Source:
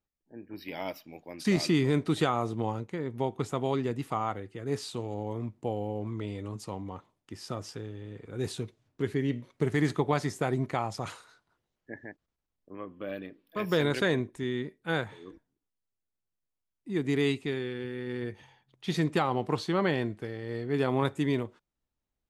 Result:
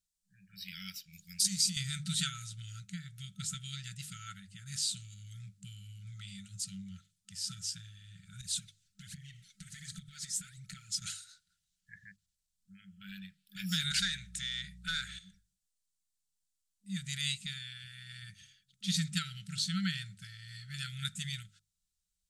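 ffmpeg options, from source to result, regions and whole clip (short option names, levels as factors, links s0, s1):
-filter_complex "[0:a]asettb=1/sr,asplit=3[s0][s1][s2];[s0]atrim=end=1.134[s3];[s1]atrim=start=1.13:end=1.77,asetpts=PTS-STARTPTS,afade=t=in:d=0.004:c=qsin,afade=t=out:st=0.636:d=0.004:c=qsin,bass=f=250:g=4,treble=f=4000:g=11,acompressor=threshold=0.0282:ratio=10:attack=3.2:release=140:knee=1:detection=peak[s4];[s2]atrim=start=1.766[s5];[s3][s4]acrossfade=d=0.004:c1=hsin:c2=qsin[s6];[s6][s5]acrossfade=d=0.004:c1=qsin:c2=hsin,asettb=1/sr,asplit=3[s7][s8][s9];[s7]atrim=end=8.414[s10];[s8]atrim=start=8.41:end=11.02,asetpts=PTS-STARTPTS,afade=t=in:d=0.004:c=qsin,afade=t=out:st=2.606:d=0.004:c=qsin,aphaser=in_gain=1:out_gain=1:delay=4.7:decay=0.59:speed=1.3:type=triangular,acompressor=threshold=0.0178:ratio=16:attack=3.2:release=140:knee=1:detection=peak[s11];[s9]atrim=start=11.016[s12];[s10][s11]acrossfade=d=0.004:c1=hsin:c2=qsin[s13];[s13][s12]acrossfade=d=0.004:c1=qsin:c2=hsin,asettb=1/sr,asplit=3[s14][s15][s16];[s14]atrim=end=13.914[s17];[s15]atrim=start=13.91:end=15.19,asetpts=PTS-STARTPTS,afade=t=in:d=0.004:c=qsin,afade=t=out:st=1.276:d=0.004:c=qsin,acompressor=threshold=0.0316:ratio=3:attack=3.2:release=140:knee=1:detection=peak,aeval=exprs='val(0)+0.00562*(sin(2*PI*60*n/s)+sin(2*PI*2*60*n/s)/2+sin(2*PI*3*60*n/s)/3+sin(2*PI*4*60*n/s)/4+sin(2*PI*5*60*n/s)/5)':c=same,asplit=2[s18][s19];[s19]highpass=f=720:p=1,volume=6.31,asoftclip=type=tanh:threshold=0.158[s20];[s18][s20]amix=inputs=2:normalize=0,lowpass=f=4400:p=1,volume=0.501[s21];[s16]atrim=start=15.186[s22];[s17][s21]acrossfade=d=0.004:c1=hsin:c2=qsin[s23];[s23][s22]acrossfade=d=0.004:c1=qsin:c2=hsin,bandreject=f=50:t=h:w=6,bandreject=f=100:t=h:w=6,bandreject=f=150:t=h:w=6,afftfilt=real='re*(1-between(b*sr/4096,200,1300))':imag='im*(1-between(b*sr/4096,200,1300))':win_size=4096:overlap=0.75,equalizer=f=125:t=o:w=1:g=-11,equalizer=f=250:t=o:w=1:g=7,equalizer=f=500:t=o:w=1:g=12,equalizer=f=1000:t=o:w=1:g=-10,equalizer=f=2000:t=o:w=1:g=-7,equalizer=f=4000:t=o:w=1:g=5,equalizer=f=8000:t=o:w=1:g=12"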